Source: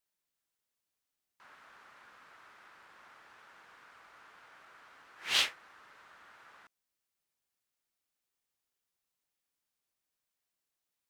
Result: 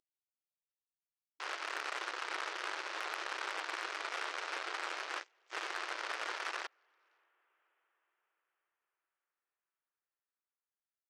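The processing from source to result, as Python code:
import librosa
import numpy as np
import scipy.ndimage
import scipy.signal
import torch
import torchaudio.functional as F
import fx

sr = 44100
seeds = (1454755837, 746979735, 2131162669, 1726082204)

p1 = fx.cvsd(x, sr, bps=16000)
p2 = fx.over_compress(p1, sr, threshold_db=-56.0, ratio=-1.0)
p3 = p2 + fx.echo_diffused(p2, sr, ms=579, feedback_pct=51, wet_db=-16.0, dry=0)
p4 = fx.cheby_harmonics(p3, sr, harmonics=(7,), levels_db=(-16,), full_scale_db=-39.0)
p5 = fx.brickwall_highpass(p4, sr, low_hz=310.0)
y = F.gain(torch.from_numpy(p5), 15.5).numpy()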